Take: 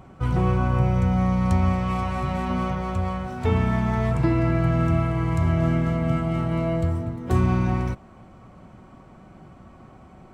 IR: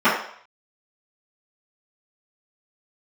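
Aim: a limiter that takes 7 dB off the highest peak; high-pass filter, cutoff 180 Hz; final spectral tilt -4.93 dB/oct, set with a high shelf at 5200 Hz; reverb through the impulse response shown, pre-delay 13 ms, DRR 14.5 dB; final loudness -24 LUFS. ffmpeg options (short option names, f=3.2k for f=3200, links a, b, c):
-filter_complex "[0:a]highpass=180,highshelf=f=5.2k:g=6,alimiter=limit=-19.5dB:level=0:latency=1,asplit=2[a][b];[1:a]atrim=start_sample=2205,adelay=13[c];[b][c]afir=irnorm=-1:irlink=0,volume=-38dB[d];[a][d]amix=inputs=2:normalize=0,volume=5dB"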